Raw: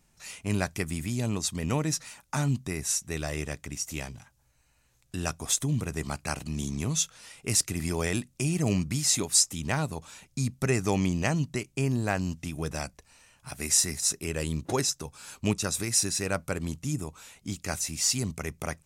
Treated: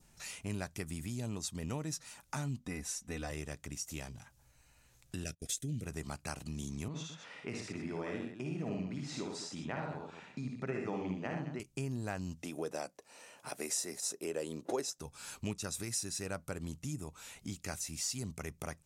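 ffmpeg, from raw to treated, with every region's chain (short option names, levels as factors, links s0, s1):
-filter_complex "[0:a]asettb=1/sr,asplit=3[s0][s1][s2];[s0]atrim=end=2.594[s3];[s1]atrim=start=2.59:end=3.31,asetpts=PTS-STARTPTS,afade=t=in:d=0.004:c=qsin,afade=t=out:st=0.716:d=0.004:c=qsin,highshelf=f=4100:g=-8,aecho=1:1:4:0.8,atrim=end_sample=31752[s4];[s2]atrim=start=3.306[s5];[s3][s4]acrossfade=d=0.004:c1=hsin:c2=qsin[s6];[s6][s5]acrossfade=d=0.004:c1=qsin:c2=hsin,asettb=1/sr,asplit=3[s7][s8][s9];[s7]atrim=end=5.244[s10];[s8]atrim=start=5.24:end=5.84,asetpts=PTS-STARTPTS,afade=t=in:d=0.004:c=qsin,afade=t=out:st=0.596:d=0.004:c=qsin,agate=range=0.0501:threshold=0.0112:ratio=16:release=100:detection=peak,asuperstop=centerf=990:order=4:qfactor=0.84[s11];[s9]atrim=start=5.836[s12];[s10][s11]acrossfade=d=0.004:c1=hsin:c2=qsin[s13];[s13][s12]acrossfade=d=0.004:c1=qsin:c2=hsin,asettb=1/sr,asplit=3[s14][s15][s16];[s14]atrim=end=6.884[s17];[s15]atrim=start=6.88:end=11.6,asetpts=PTS-STARTPTS,afade=t=in:d=0.004:c=qsin,afade=t=out:st=4.716:d=0.004:c=qsin,highpass=190,lowpass=2200,aecho=1:1:55|76|119|212:0.631|0.562|0.398|0.211,atrim=end_sample=208152[s18];[s16]atrim=start=11.596[s19];[s17][s18]acrossfade=d=0.004:c1=hsin:c2=qsin[s20];[s20][s19]acrossfade=d=0.004:c1=qsin:c2=hsin,asettb=1/sr,asplit=3[s21][s22][s23];[s21]atrim=end=12.434[s24];[s22]atrim=start=12.43:end=14.99,asetpts=PTS-STARTPTS,afade=t=in:d=0.004:c=qsin,afade=t=out:st=2.556:d=0.004:c=qsin,highpass=250,equalizer=f=490:t=o:w=1.7:g=10[s25];[s23]atrim=start=14.986[s26];[s24][s25]acrossfade=d=0.004:c1=hsin:c2=qsin[s27];[s27][s26]acrossfade=d=0.004:c1=qsin:c2=hsin,bandreject=f=1100:w=26,adynamicequalizer=threshold=0.00251:dfrequency=2200:dqfactor=2.5:tfrequency=2200:tqfactor=2.5:attack=5:release=100:ratio=0.375:range=2:mode=cutabove:tftype=bell,acompressor=threshold=0.00398:ratio=2,volume=1.26"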